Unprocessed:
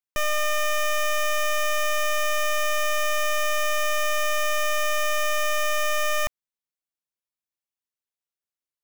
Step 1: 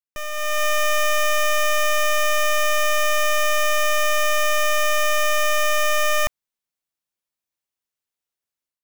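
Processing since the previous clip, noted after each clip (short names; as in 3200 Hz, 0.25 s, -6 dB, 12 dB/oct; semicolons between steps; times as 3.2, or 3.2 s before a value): AGC gain up to 11.5 dB; gain -7 dB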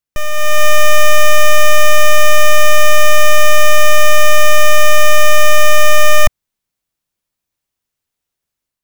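low shelf 200 Hz +10.5 dB; gain +7.5 dB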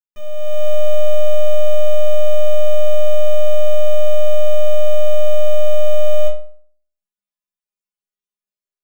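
metallic resonator 200 Hz, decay 0.53 s, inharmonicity 0.002; gain -1 dB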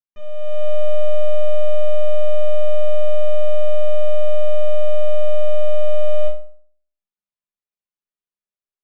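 air absorption 200 m; gain -2.5 dB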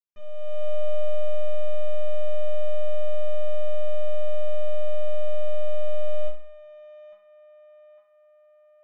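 narrowing echo 0.854 s, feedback 68%, band-pass 1100 Hz, level -10 dB; gain -7 dB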